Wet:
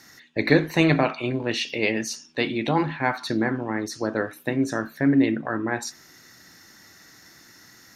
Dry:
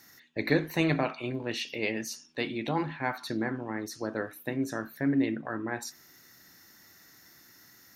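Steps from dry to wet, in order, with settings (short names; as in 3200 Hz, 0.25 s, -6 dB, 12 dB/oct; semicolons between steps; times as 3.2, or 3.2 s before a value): LPF 9200 Hz 12 dB/oct; gain +7.5 dB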